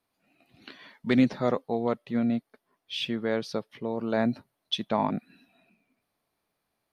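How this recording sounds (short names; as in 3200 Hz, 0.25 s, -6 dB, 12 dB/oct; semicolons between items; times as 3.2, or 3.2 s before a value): noise floor -81 dBFS; spectral tilt -4.5 dB/oct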